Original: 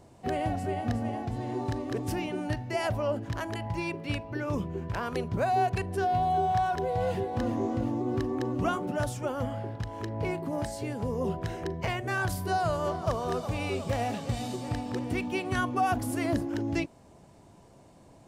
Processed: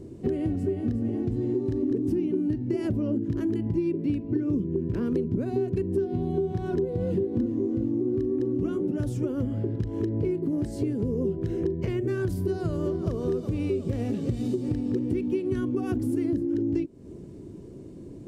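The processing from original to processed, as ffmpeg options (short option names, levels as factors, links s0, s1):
-filter_complex "[0:a]asettb=1/sr,asplit=3[s0][s1][s2];[s0]atrim=end=1.824[s3];[s1]atrim=start=1.82:end=7.46,asetpts=PTS-STARTPTS,afade=t=in:d=0.004:c=qsin,afade=t=out:st=5.636:d=0.004:c=qsin,equalizer=f=240:t=o:w=1.2:g=8[s4];[s2]atrim=start=7.456[s5];[s3][s4]acrossfade=d=0.004:c1=hsin:c2=qsin[s6];[s6][s5]acrossfade=d=0.004:c1=qsin:c2=hsin,lowshelf=f=530:t=q:w=3:g=12.5,acompressor=threshold=0.0708:ratio=6,volume=0.841"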